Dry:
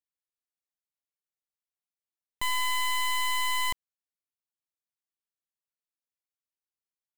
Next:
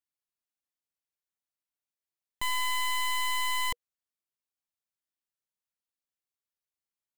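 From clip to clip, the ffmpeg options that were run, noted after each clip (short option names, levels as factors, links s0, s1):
-af "bandreject=f=480:w=12,volume=0.841"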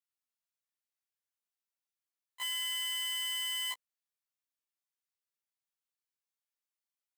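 -af "highpass=820,afftfilt=real='re*1.73*eq(mod(b,3),0)':imag='im*1.73*eq(mod(b,3),0)':win_size=2048:overlap=0.75"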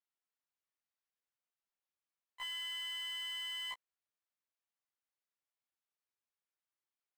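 -filter_complex "[0:a]asplit=2[s0][s1];[s1]highpass=f=720:p=1,volume=2.51,asoftclip=type=tanh:threshold=0.0447[s2];[s0][s2]amix=inputs=2:normalize=0,lowpass=f=1600:p=1,volume=0.501,volume=0.841"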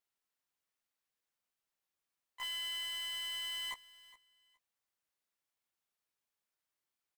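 -filter_complex "[0:a]asplit=2[s0][s1];[s1]aeval=exprs='(mod(100*val(0)+1,2)-1)/100':c=same,volume=0.282[s2];[s0][s2]amix=inputs=2:normalize=0,aecho=1:1:416|832:0.112|0.0213,volume=1.19"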